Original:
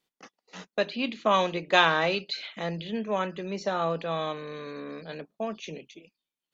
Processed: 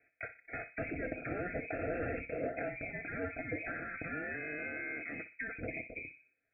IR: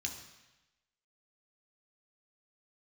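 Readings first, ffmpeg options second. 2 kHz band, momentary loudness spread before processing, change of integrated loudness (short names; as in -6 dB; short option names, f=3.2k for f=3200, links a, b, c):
-7.5 dB, 17 LU, -11.5 dB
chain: -filter_complex "[0:a]aemphasis=mode=reproduction:type=50fm,afftfilt=real='re*lt(hypot(re,im),0.0631)':imag='im*lt(hypot(re,im),0.0631)':win_size=1024:overlap=0.75,highpass=88,lowshelf=f=500:g=-9.5,aecho=1:1:5.4:0.53,acrossover=split=2100[a][b];[a]acompressor=threshold=-57dB:ratio=6[c];[c][b]amix=inputs=2:normalize=0,asplit=2[d][e];[e]adelay=61,lowpass=f=870:p=1,volume=-8.5dB,asplit=2[f][g];[g]adelay=61,lowpass=f=870:p=1,volume=0.46,asplit=2[h][i];[i]adelay=61,lowpass=f=870:p=1,volume=0.46,asplit=2[j][k];[k]adelay=61,lowpass=f=870:p=1,volume=0.46,asplit=2[l][m];[m]adelay=61,lowpass=f=870:p=1,volume=0.46[n];[d][f][h][j][l][n]amix=inputs=6:normalize=0,aresample=11025,asoftclip=type=tanh:threshold=-36.5dB,aresample=44100,lowpass=f=2.3k:t=q:w=0.5098,lowpass=f=2.3k:t=q:w=0.6013,lowpass=f=2.3k:t=q:w=0.9,lowpass=f=2.3k:t=q:w=2.563,afreqshift=-2700,asuperstop=centerf=1000:order=8:qfactor=1.5,volume=16.5dB"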